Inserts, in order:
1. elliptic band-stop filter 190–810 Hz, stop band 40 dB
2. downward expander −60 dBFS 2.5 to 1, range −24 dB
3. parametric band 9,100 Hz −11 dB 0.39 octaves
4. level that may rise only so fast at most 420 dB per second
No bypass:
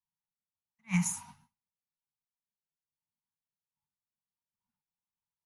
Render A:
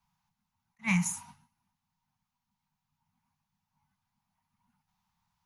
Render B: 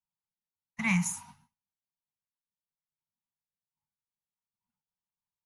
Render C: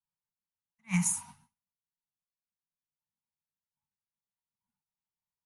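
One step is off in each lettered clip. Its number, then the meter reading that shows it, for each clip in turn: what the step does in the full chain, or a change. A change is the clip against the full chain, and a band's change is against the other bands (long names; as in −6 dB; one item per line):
2, 2 kHz band +5.0 dB
4, change in crest factor −2.5 dB
3, 8 kHz band +4.5 dB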